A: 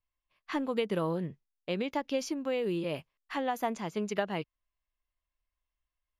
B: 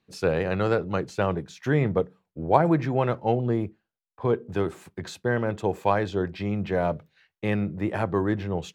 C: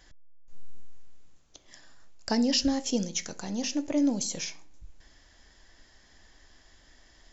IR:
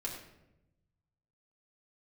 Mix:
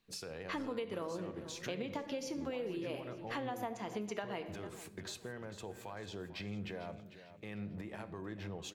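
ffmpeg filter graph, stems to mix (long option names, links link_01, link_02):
-filter_complex "[0:a]equalizer=frequency=150:width_type=o:width=0.43:gain=-12,volume=-3.5dB,asplit=3[link_01][link_02][link_03];[link_02]volume=-3dB[link_04];[link_03]volume=-18.5dB[link_05];[1:a]highshelf=frequency=2400:gain=9.5,acompressor=threshold=-28dB:ratio=6,alimiter=level_in=3dB:limit=-24dB:level=0:latency=1:release=195,volume=-3dB,volume=-9dB,asplit=3[link_06][link_07][link_08];[link_07]volume=-9dB[link_09];[link_08]volume=-12dB[link_10];[3:a]atrim=start_sample=2205[link_11];[link_04][link_09]amix=inputs=2:normalize=0[link_12];[link_12][link_11]afir=irnorm=-1:irlink=0[link_13];[link_05][link_10]amix=inputs=2:normalize=0,aecho=0:1:448|896|1344|1792|2240:1|0.37|0.137|0.0507|0.0187[link_14];[link_01][link_06][link_13][link_14]amix=inputs=4:normalize=0,acompressor=threshold=-37dB:ratio=5"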